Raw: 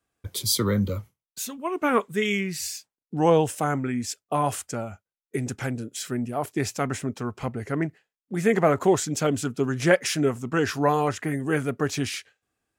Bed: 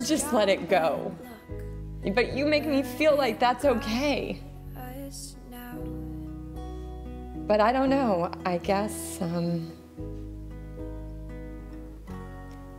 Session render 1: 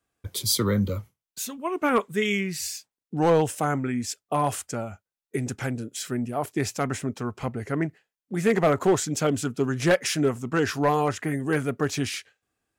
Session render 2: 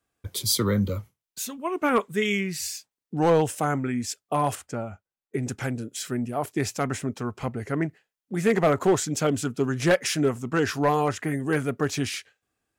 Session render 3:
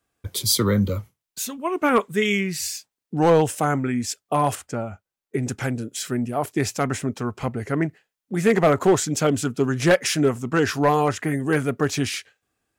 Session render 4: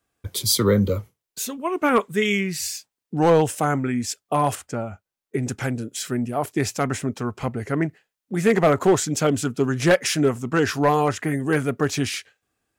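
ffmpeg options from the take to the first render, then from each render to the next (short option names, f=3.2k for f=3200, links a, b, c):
-af "volume=13.5dB,asoftclip=hard,volume=-13.5dB"
-filter_complex "[0:a]asettb=1/sr,asplit=3[a][b][c];[a]atrim=end=4.554[d];[b]atrim=start=4.55:end=5.43,asetpts=PTS-STARTPTS,afade=t=in:d=0.004:c=qsin,afade=t=out:st=0.876:d=0.004:c=qsin,highshelf=f=3.6k:g=-11[e];[c]atrim=start=5.426[f];[d][e]acrossfade=d=0.004:c1=hsin:c2=qsin[g];[g][f]acrossfade=d=0.004:c1=qsin:c2=hsin"
-af "volume=3.5dB"
-filter_complex "[0:a]asettb=1/sr,asplit=3[a][b][c];[a]atrim=end=0.644[d];[b]atrim=start=0.64:end=1.62,asetpts=PTS-STARTPTS,afade=t=in:d=0.004:c=qsin,afade=t=out:st=0.976:d=0.004:c=qsin,equalizer=f=440:t=o:w=0.77:g=6.5[e];[c]atrim=start=1.616[f];[d][e]acrossfade=d=0.004:c1=hsin:c2=qsin[g];[g][f]acrossfade=d=0.004:c1=qsin:c2=hsin"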